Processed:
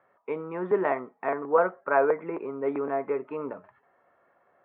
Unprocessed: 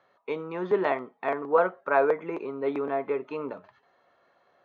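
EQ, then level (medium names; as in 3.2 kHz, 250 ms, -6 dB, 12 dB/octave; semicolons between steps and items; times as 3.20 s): low-pass 2.2 kHz 24 dB/octave; 0.0 dB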